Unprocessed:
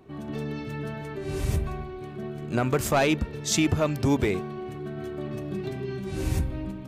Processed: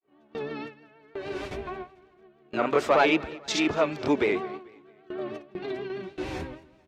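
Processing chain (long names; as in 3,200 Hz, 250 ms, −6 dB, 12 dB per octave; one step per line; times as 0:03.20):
granular cloud 135 ms, grains 20 per second, spray 35 ms, pitch spread up and down by 0 semitones
three-way crossover with the lows and the highs turned down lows −20 dB, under 290 Hz, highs −22 dB, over 4,600 Hz
noise gate with hold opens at −31 dBFS
repeating echo 221 ms, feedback 42%, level −21.5 dB
pitch vibrato 6.4 Hz 59 cents
level +5.5 dB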